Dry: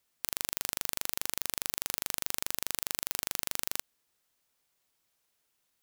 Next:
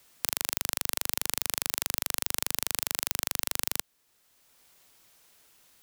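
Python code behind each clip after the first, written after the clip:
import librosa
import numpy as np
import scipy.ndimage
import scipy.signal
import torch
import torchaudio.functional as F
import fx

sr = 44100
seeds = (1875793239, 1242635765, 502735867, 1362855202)

y = fx.band_squash(x, sr, depth_pct=40)
y = y * librosa.db_to_amplitude(4.0)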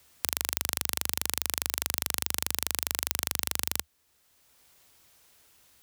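y = fx.peak_eq(x, sr, hz=74.0, db=11.0, octaves=0.65)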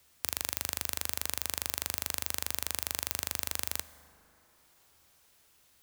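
y = fx.rev_plate(x, sr, seeds[0], rt60_s=4.0, hf_ratio=0.4, predelay_ms=0, drr_db=14.5)
y = y * librosa.db_to_amplitude(-4.0)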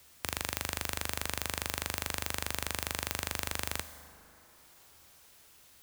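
y = 10.0 ** (-20.5 / 20.0) * np.tanh(x / 10.0 ** (-20.5 / 20.0))
y = y * librosa.db_to_amplitude(6.0)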